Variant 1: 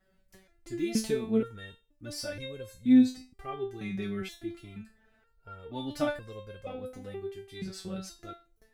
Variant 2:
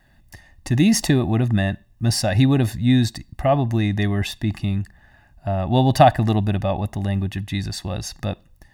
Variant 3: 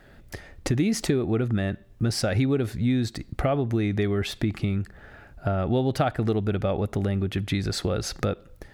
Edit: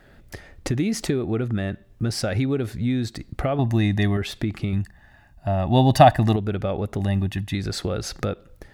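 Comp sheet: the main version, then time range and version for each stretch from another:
3
3.59–4.17 s: from 2
4.73–6.36 s: from 2
7.00–7.55 s: from 2
not used: 1

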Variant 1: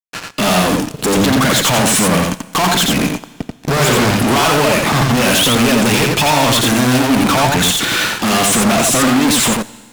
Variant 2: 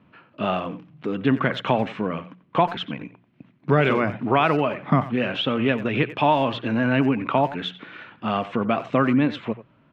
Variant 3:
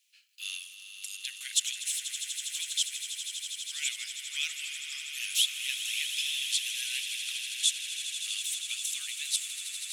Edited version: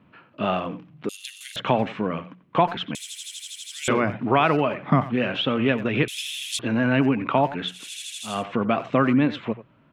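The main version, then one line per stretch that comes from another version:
2
1.09–1.56 s: from 3
2.95–3.88 s: from 3
6.08–6.59 s: from 3
7.79–8.33 s: from 3, crossfade 0.24 s
not used: 1

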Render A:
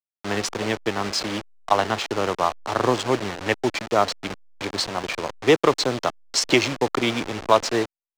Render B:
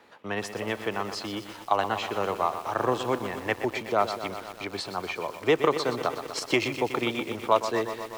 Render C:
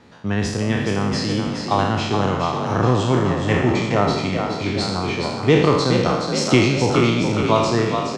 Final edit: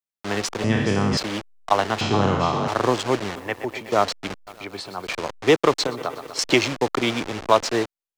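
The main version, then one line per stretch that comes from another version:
A
0.64–1.17 s: from C
2.01–2.68 s: from C
3.36–3.92 s: from B
4.47–5.07 s: from B
5.87–6.39 s: from B

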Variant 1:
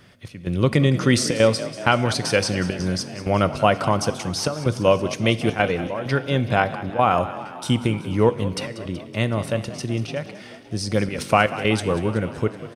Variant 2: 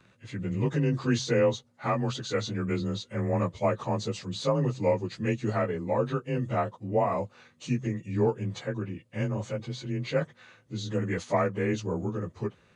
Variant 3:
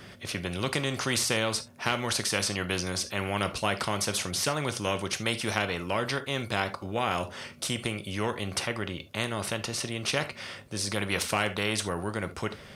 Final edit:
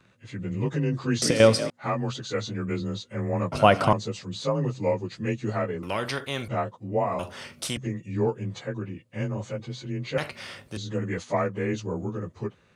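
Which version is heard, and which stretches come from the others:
2
1.22–1.70 s: from 1
3.52–3.93 s: from 1
5.83–6.48 s: from 3
7.19–7.77 s: from 3
10.18–10.77 s: from 3

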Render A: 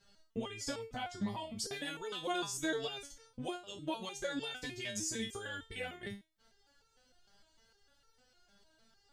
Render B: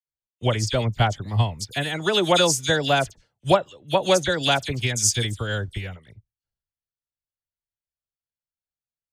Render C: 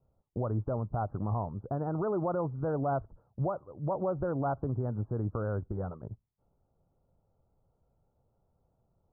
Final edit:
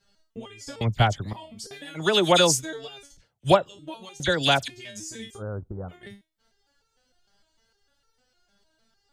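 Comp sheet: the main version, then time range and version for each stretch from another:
A
0.81–1.33 s: from B
1.97–2.63 s: from B, crossfade 0.06 s
3.17–3.69 s: from B
4.20–4.68 s: from B
5.40–5.91 s: from C, crossfade 0.06 s

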